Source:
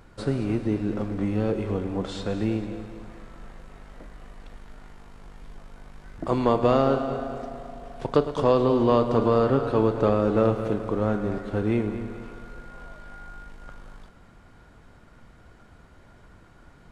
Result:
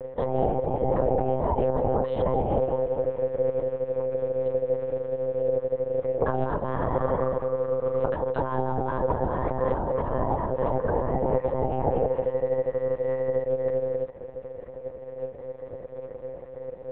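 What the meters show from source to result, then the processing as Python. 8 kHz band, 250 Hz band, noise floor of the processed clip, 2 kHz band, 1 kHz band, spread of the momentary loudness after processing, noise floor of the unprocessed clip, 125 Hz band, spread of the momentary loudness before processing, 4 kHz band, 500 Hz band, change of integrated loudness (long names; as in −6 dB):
can't be measured, −6.5 dB, −42 dBFS, −2.0 dB, +1.5 dB, 13 LU, −53 dBFS, −2.0 dB, 21 LU, below −10 dB, +2.0 dB, −2.0 dB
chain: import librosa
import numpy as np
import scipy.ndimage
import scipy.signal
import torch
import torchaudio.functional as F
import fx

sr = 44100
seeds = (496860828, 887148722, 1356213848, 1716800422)

y = fx.dereverb_blind(x, sr, rt60_s=0.56)
y = fx.tilt_eq(y, sr, slope=-3.5)
y = fx.over_compress(y, sr, threshold_db=-21.0, ratio=-1.0)
y = y * np.sin(2.0 * np.pi * 500.0 * np.arange(len(y)) / sr)
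y = fx.lpc_monotone(y, sr, seeds[0], pitch_hz=130.0, order=10)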